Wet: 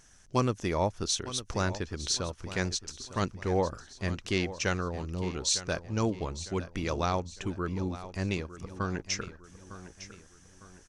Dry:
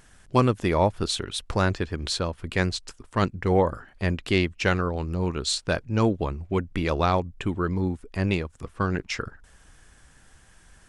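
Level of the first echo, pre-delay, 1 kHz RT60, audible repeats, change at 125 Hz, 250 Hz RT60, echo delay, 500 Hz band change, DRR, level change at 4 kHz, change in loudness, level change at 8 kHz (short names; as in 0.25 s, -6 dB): -14.0 dB, none, none, 3, -7.0 dB, none, 0.905 s, -7.0 dB, none, -3.5 dB, -6.0 dB, +3.0 dB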